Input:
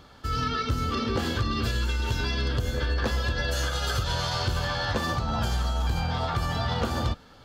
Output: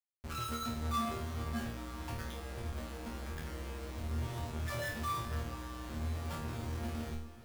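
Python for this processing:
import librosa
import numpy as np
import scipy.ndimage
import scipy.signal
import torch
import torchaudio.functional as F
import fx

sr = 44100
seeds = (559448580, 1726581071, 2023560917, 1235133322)

p1 = fx.low_shelf(x, sr, hz=170.0, db=-7.5, at=(1.54, 2.8))
p2 = fx.spec_topn(p1, sr, count=2)
p3 = fx.schmitt(p2, sr, flips_db=-41.5)
p4 = fx.resonator_bank(p3, sr, root=39, chord='fifth', decay_s=0.51)
p5 = p4 + fx.echo_diffused(p4, sr, ms=458, feedback_pct=58, wet_db=-15.5, dry=0)
y = p5 * librosa.db_to_amplitude(7.0)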